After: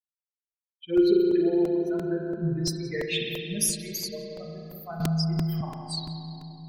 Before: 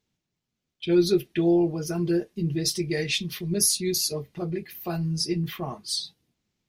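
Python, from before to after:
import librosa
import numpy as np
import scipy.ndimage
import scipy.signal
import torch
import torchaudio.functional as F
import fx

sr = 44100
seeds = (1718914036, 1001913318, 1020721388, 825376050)

y = fx.bin_expand(x, sr, power=3.0)
y = fx.echo_filtered(y, sr, ms=174, feedback_pct=85, hz=1100.0, wet_db=-7.0)
y = fx.rev_spring(y, sr, rt60_s=2.3, pass_ms=(37,), chirp_ms=30, drr_db=-0.5)
y = fx.buffer_crackle(y, sr, first_s=0.63, period_s=0.34, block=128, kind='repeat')
y = fx.band_squash(y, sr, depth_pct=100, at=(5.0, 5.61))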